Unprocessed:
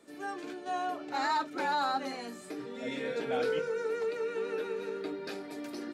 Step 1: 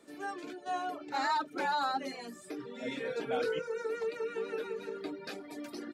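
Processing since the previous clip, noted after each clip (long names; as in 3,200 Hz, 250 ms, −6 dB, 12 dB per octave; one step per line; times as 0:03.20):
reverb reduction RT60 0.97 s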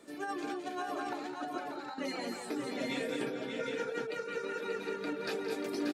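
compressor whose output falls as the input rises −38 dBFS, ratio −0.5
on a send: multi-tap delay 172/210/224/585/763 ms −14.5/−8.5/−9.5/−6/−4.5 dB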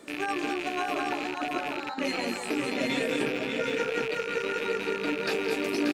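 loose part that buzzes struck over −53 dBFS, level −30 dBFS
level +7 dB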